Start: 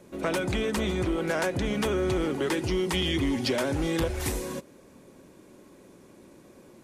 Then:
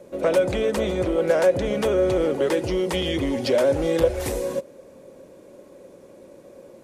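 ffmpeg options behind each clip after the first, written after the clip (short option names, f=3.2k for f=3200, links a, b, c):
-af "equalizer=f=540:t=o:w=0.59:g=14.5"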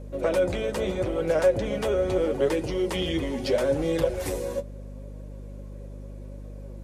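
-af "flanger=delay=6.4:depth=6:regen=36:speed=0.77:shape=sinusoidal,aeval=exprs='val(0)+0.0126*(sin(2*PI*50*n/s)+sin(2*PI*2*50*n/s)/2+sin(2*PI*3*50*n/s)/3+sin(2*PI*4*50*n/s)/4+sin(2*PI*5*50*n/s)/5)':c=same"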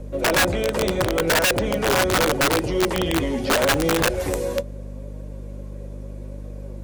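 -filter_complex "[0:a]acrossover=split=140|2300[a][b][c];[c]alimiter=level_in=10.5dB:limit=-24dB:level=0:latency=1:release=66,volume=-10.5dB[d];[a][b][d]amix=inputs=3:normalize=0,aeval=exprs='(mod(8.41*val(0)+1,2)-1)/8.41':c=same,volume=5.5dB"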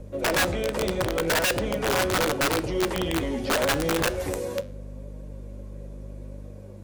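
-af "flanger=delay=9.9:depth=6.8:regen=-85:speed=0.45:shape=sinusoidal"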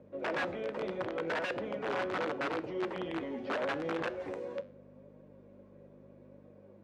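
-af "highpass=200,lowpass=2.3k,volume=-9dB"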